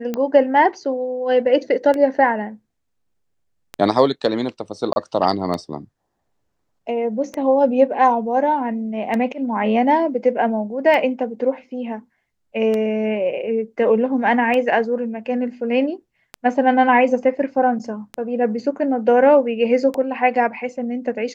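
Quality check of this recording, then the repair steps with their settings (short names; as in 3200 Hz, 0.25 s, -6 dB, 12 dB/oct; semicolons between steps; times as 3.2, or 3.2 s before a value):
tick 33 1/3 rpm -12 dBFS
4.93–4.96 gap 31 ms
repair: de-click; interpolate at 4.93, 31 ms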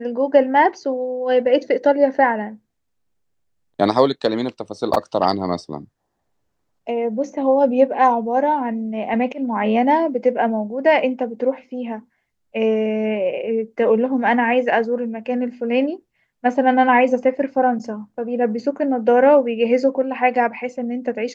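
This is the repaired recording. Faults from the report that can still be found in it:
none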